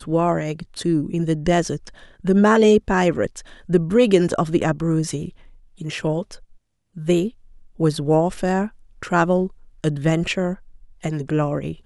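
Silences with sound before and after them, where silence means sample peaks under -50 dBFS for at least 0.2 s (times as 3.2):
6.57–6.95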